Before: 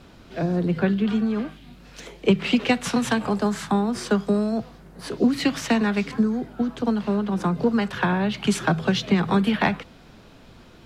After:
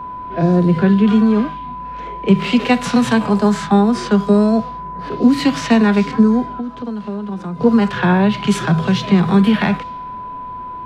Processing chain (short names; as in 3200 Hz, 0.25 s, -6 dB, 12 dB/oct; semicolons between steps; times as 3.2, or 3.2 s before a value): low-pass opened by the level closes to 1600 Hz, open at -18.5 dBFS; whine 1000 Hz -38 dBFS; in parallel at -1 dB: limiter -19 dBFS, peak gain reduction 11.5 dB; 6.44–7.61 on the sum: compressor 10:1, threshold -27 dBFS, peak gain reduction 13 dB; harmonic-percussive split percussive -10 dB; gain +6 dB